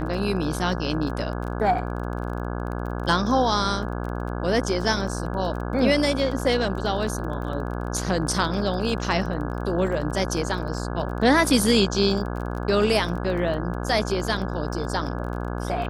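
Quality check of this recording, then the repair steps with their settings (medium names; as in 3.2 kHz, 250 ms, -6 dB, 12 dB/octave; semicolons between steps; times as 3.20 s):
buzz 60 Hz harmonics 28 -29 dBFS
crackle 25 per s -32 dBFS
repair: de-click; de-hum 60 Hz, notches 28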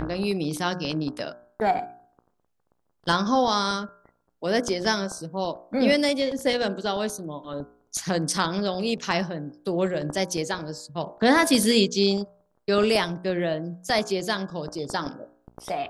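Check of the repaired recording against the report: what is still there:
nothing left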